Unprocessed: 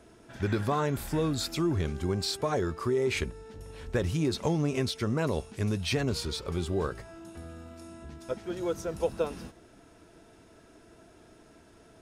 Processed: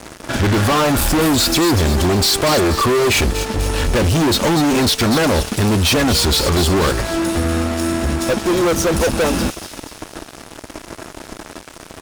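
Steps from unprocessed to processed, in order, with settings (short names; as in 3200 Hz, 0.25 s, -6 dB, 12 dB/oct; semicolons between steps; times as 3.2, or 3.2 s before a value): notch 2100 Hz, Q 5.8; comb 3.5 ms, depth 35%; in parallel at -1.5 dB: compressor, threshold -43 dBFS, peak gain reduction 19.5 dB; on the sum: fuzz box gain 40 dB, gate -47 dBFS; thin delay 0.242 s, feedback 51%, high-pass 3400 Hz, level -7 dB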